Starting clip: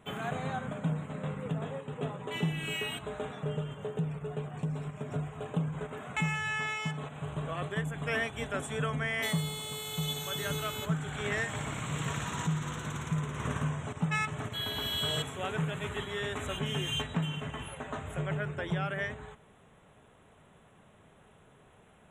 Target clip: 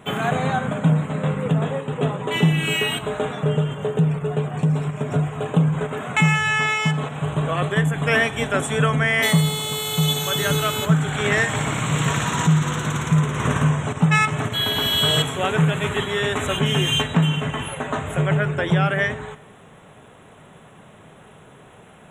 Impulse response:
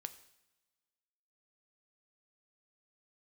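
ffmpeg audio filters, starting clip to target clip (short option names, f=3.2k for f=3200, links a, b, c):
-filter_complex "[0:a]asplit=2[a][b];[b]highpass=110[c];[1:a]atrim=start_sample=2205,lowshelf=f=70:g=9.5[d];[c][d]afir=irnorm=-1:irlink=0,volume=5dB[e];[a][e]amix=inputs=2:normalize=0,volume=6.5dB"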